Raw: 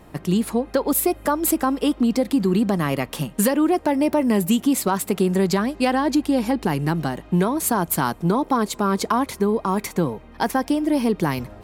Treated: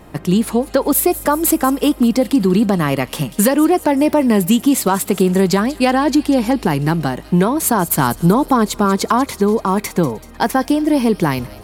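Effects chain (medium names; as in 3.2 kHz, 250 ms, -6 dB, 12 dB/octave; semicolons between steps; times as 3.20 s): 7.99–8.85 s: bass shelf 140 Hz +7.5 dB; on a send: feedback echo behind a high-pass 191 ms, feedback 57%, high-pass 3.1 kHz, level -13 dB; on the sum: trim +5.5 dB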